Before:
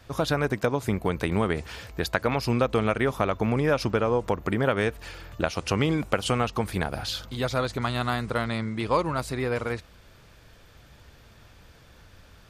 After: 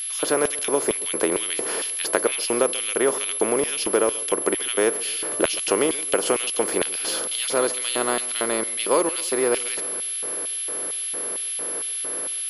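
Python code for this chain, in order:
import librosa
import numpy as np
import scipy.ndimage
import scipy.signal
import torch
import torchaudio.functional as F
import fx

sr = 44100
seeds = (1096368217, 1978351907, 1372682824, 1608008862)

p1 = fx.bin_compress(x, sr, power=0.6)
p2 = fx.high_shelf(p1, sr, hz=6600.0, db=4.0)
p3 = fx.notch(p2, sr, hz=3800.0, q=12.0)
p4 = fx.rider(p3, sr, range_db=4, speed_s=0.5)
p5 = p3 + F.gain(torch.from_numpy(p4), -1.0).numpy()
p6 = fx.filter_lfo_highpass(p5, sr, shape='square', hz=2.2, low_hz=370.0, high_hz=3000.0, q=2.5)
p7 = p6 + 10.0 ** (-19.0 / 20.0) * np.sin(2.0 * np.pi * 11000.0 * np.arange(len(p6)) / sr)
p8 = p7 + fx.echo_feedback(p7, sr, ms=136, feedback_pct=46, wet_db=-19, dry=0)
y = F.gain(torch.from_numpy(p8), -8.0).numpy()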